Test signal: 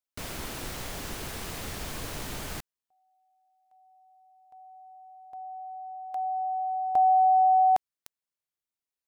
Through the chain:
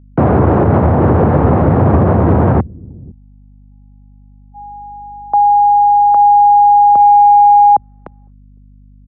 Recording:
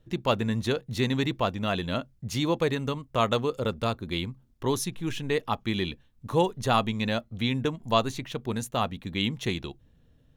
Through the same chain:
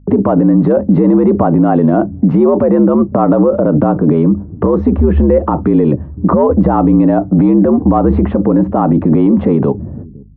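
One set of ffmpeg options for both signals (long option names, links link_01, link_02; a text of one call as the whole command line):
ffmpeg -i in.wav -filter_complex "[0:a]agate=range=-44dB:threshold=-48dB:ratio=16:release=318:detection=rms,aresample=16000,asoftclip=type=tanh:threshold=-16dB,aresample=44100,acompressor=threshold=-38dB:ratio=10:attack=14:release=37:knee=1:detection=rms,afreqshift=70,acrossover=split=340|1100[link_01][link_02][link_03];[link_01]aecho=1:1:507:0.0708[link_04];[link_03]acrusher=bits=3:mix=0:aa=0.000001[link_05];[link_04][link_02][link_05]amix=inputs=3:normalize=0,aeval=exprs='val(0)+0.0002*(sin(2*PI*50*n/s)+sin(2*PI*2*50*n/s)/2+sin(2*PI*3*50*n/s)/3+sin(2*PI*4*50*n/s)/4+sin(2*PI*5*50*n/s)/5)':channel_layout=same,alimiter=level_in=34.5dB:limit=-1dB:release=50:level=0:latency=1,volume=-1dB" out.wav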